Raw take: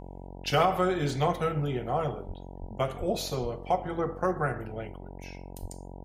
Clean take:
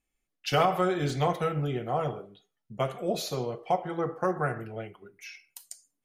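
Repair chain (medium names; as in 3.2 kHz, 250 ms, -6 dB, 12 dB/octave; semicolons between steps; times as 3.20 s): de-hum 45.8 Hz, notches 21; de-plosive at 2.27/2.60/2.99/3.41/5.61 s; gain correction +4.5 dB, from 4.97 s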